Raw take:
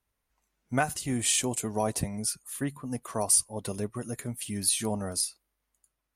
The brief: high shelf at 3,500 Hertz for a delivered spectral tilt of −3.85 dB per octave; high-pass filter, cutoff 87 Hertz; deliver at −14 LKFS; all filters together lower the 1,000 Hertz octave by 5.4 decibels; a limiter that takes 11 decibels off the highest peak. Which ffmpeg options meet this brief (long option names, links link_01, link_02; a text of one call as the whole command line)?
ffmpeg -i in.wav -af "highpass=87,equalizer=frequency=1000:width_type=o:gain=-8.5,highshelf=frequency=3500:gain=3.5,volume=17.5dB,alimiter=limit=-1dB:level=0:latency=1" out.wav